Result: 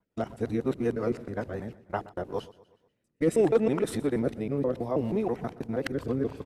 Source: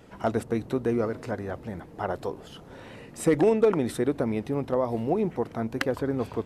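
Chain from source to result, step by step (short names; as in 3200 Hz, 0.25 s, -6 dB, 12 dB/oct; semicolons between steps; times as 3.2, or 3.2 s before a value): local time reversal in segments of 0.16 s; gate -36 dBFS, range -31 dB; rotary speaker horn 5.5 Hz, later 0.7 Hz, at 2.01; on a send: feedback echo 0.122 s, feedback 50%, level -19 dB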